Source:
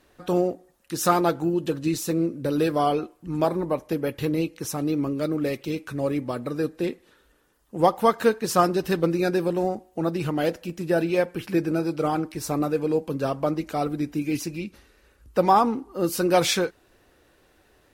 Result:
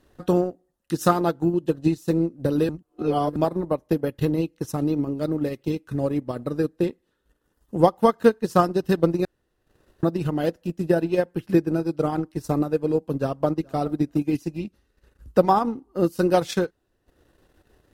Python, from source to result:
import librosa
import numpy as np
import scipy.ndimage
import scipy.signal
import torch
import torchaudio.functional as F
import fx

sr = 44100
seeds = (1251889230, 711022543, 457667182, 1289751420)

y = fx.echo_throw(x, sr, start_s=13.2, length_s=0.55, ms=420, feedback_pct=10, wet_db=-14.5)
y = fx.edit(y, sr, fx.reverse_span(start_s=2.69, length_s=0.67),
    fx.room_tone_fill(start_s=9.25, length_s=0.78), tone=tone)
y = fx.low_shelf(y, sr, hz=380.0, db=8.0)
y = fx.notch(y, sr, hz=2300.0, q=8.9)
y = fx.transient(y, sr, attack_db=6, sustain_db=-12)
y = y * 10.0 ** (-4.5 / 20.0)